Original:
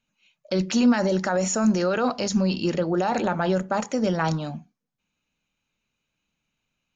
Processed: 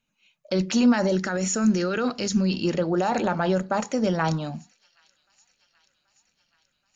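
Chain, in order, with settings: 1.15–2.53 band shelf 790 Hz -8.5 dB 1.2 oct; on a send: thin delay 0.779 s, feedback 67%, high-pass 2800 Hz, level -24 dB

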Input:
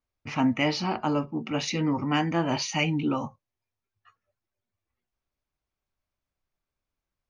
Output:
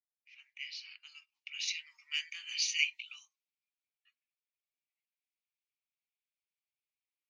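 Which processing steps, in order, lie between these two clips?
opening faded in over 2.14 s; low-pass opened by the level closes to 2900 Hz, open at -23 dBFS; elliptic high-pass 2300 Hz, stop band 80 dB

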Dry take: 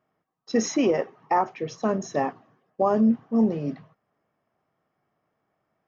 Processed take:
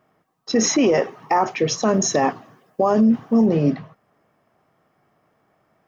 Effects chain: 0.86–3.46 high shelf 4400 Hz +11.5 dB; maximiser +20 dB; gain -8.5 dB

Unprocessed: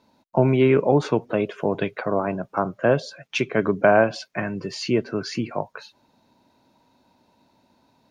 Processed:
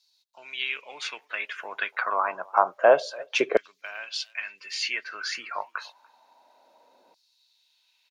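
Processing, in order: harmoniser -4 st -17 dB; speakerphone echo 0.29 s, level -27 dB; LFO high-pass saw down 0.28 Hz 450–4800 Hz

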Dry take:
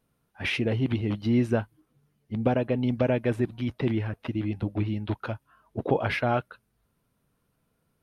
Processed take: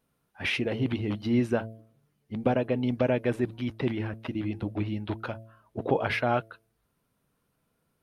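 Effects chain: low shelf 150 Hz -5 dB; de-hum 111.6 Hz, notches 6

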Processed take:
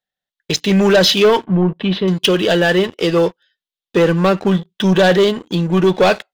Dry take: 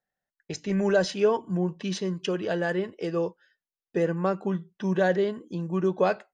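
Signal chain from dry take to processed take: bell 3500 Hz +15 dB 0.77 oct; sample leveller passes 3; 1.44–2.08 air absorption 480 m; gain +3 dB

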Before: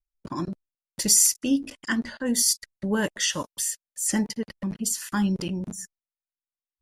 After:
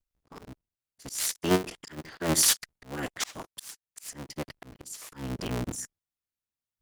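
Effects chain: cycle switcher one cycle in 3, inverted; auto swell 0.506 s

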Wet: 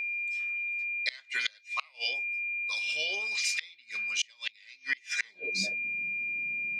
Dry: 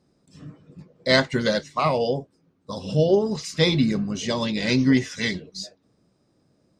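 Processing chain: high-pass sweep 2300 Hz -> 180 Hz, 5.09–5.68; whine 2400 Hz -32 dBFS; flipped gate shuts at -17 dBFS, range -31 dB; gain +1.5 dB

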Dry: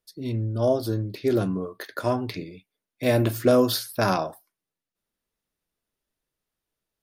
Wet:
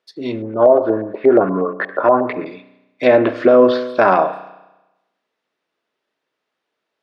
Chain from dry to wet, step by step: block floating point 7-bit; reverb RT60 1.0 s, pre-delay 32 ms, DRR 12.5 dB; treble ducked by the level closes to 2100 Hz, closed at -19.5 dBFS; BPF 360–3300 Hz; 0.42–2.46 LFO low-pass saw up 8.4 Hz 680–2000 Hz; maximiser +14 dB; gain -1 dB

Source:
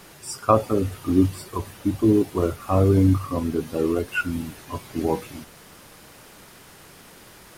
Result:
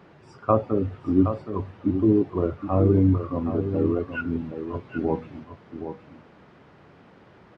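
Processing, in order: HPF 80 Hz; tape spacing loss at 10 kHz 43 dB; echo 0.77 s -9 dB

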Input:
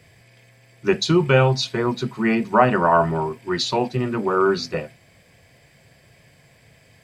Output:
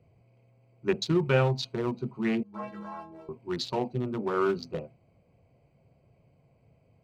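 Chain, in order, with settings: Wiener smoothing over 25 samples; 2.43–3.29 metallic resonator 97 Hz, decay 0.77 s, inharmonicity 0.03; gain -7.5 dB

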